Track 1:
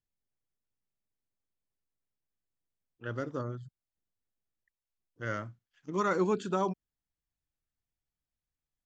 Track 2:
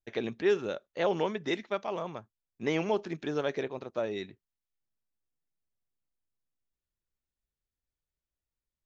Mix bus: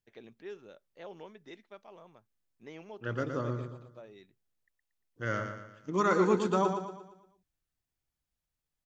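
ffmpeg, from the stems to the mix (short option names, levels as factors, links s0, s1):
-filter_complex "[0:a]volume=1.26,asplit=2[s0][s1];[s1]volume=0.447[s2];[1:a]volume=0.126[s3];[s2]aecho=0:1:116|232|348|464|580|696:1|0.44|0.194|0.0852|0.0375|0.0165[s4];[s0][s3][s4]amix=inputs=3:normalize=0"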